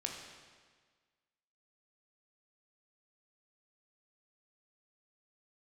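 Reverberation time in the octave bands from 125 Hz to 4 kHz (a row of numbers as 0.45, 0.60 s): 1.6, 1.6, 1.6, 1.5, 1.5, 1.4 s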